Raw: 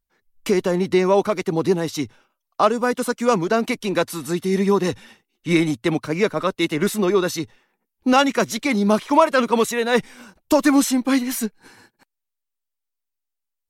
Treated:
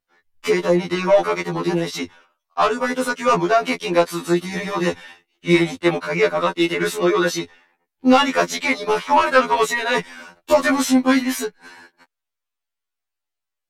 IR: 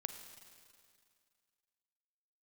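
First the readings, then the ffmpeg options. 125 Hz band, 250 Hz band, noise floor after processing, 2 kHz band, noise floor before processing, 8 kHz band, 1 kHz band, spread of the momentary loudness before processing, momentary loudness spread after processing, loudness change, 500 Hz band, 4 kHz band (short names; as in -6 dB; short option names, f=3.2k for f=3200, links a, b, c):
-1.5 dB, -0.5 dB, -82 dBFS, +4.0 dB, -81 dBFS, -0.5 dB, +2.5 dB, 10 LU, 11 LU, +1.0 dB, +1.0 dB, +2.5 dB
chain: -filter_complex "[0:a]asplit=2[a][b];[b]highpass=f=720:p=1,volume=16dB,asoftclip=type=tanh:threshold=-2.5dB[c];[a][c]amix=inputs=2:normalize=0,lowpass=f=2.7k:p=1,volume=-6dB,afftfilt=real='re*2*eq(mod(b,4),0)':imag='im*2*eq(mod(b,4),0)':win_size=2048:overlap=0.75"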